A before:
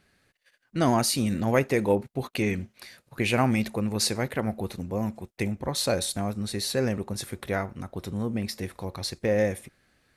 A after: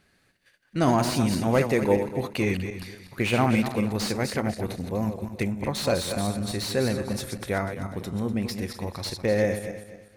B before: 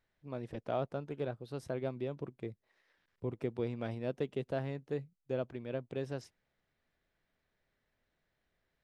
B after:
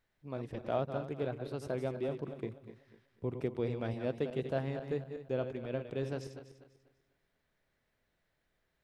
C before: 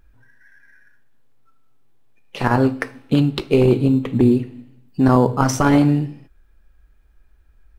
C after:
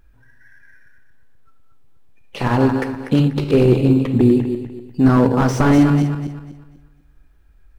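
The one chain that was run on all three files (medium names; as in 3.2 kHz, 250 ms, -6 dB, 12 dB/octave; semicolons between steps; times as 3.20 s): backward echo that repeats 123 ms, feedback 54%, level -8 dB; slew-rate limiter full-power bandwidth 150 Hz; trim +1 dB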